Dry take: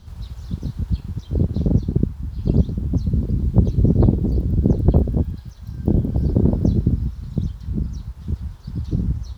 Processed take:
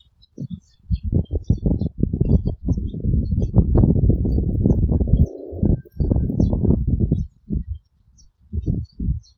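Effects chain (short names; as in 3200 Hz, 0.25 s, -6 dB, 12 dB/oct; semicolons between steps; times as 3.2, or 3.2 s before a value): slices in reverse order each 0.125 s, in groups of 3; spectral noise reduction 25 dB; spectral repair 5.1–5.63, 270–3100 Hz before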